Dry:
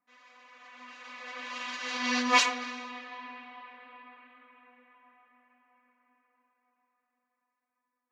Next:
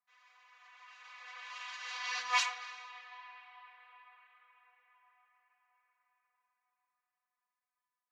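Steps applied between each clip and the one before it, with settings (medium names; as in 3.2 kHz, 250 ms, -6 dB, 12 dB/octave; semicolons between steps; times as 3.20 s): high-pass 760 Hz 24 dB/octave; trim -7 dB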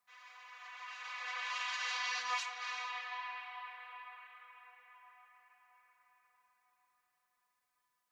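compression 10:1, threshold -43 dBFS, peak gain reduction 18.5 dB; trim +8.5 dB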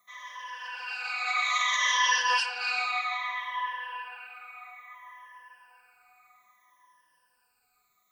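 drifting ripple filter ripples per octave 1.2, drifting -0.61 Hz, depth 21 dB; trim +7.5 dB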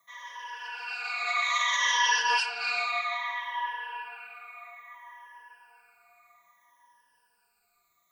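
frequency shift -34 Hz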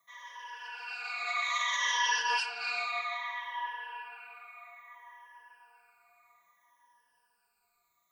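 feedback echo behind a band-pass 669 ms, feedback 57%, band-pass 590 Hz, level -23.5 dB; trim -4.5 dB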